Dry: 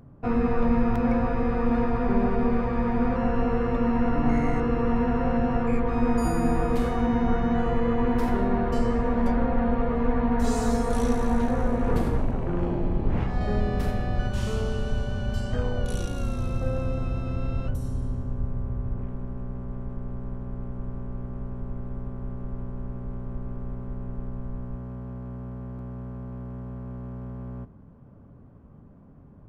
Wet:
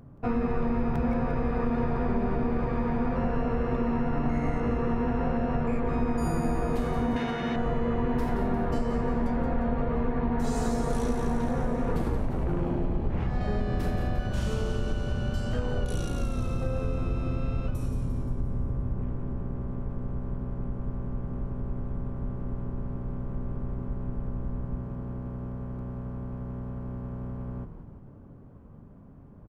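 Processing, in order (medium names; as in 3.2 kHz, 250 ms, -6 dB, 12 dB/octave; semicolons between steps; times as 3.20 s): frequency-shifting echo 175 ms, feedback 58%, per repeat -87 Hz, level -9 dB; compression 3:1, threshold -24 dBFS, peak gain reduction 7 dB; 7.16–7.56 s: frequency weighting D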